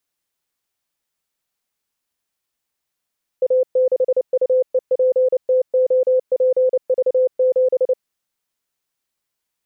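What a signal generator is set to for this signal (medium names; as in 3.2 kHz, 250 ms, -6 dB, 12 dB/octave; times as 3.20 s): Morse "A6UEPTOPV7" 29 wpm 512 Hz -12 dBFS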